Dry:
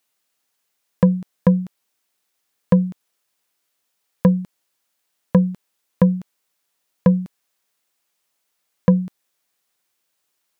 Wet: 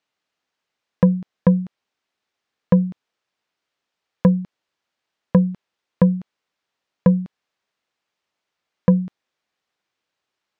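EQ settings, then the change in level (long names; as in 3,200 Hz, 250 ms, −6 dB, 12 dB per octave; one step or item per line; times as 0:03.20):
high-frequency loss of the air 150 metres
0.0 dB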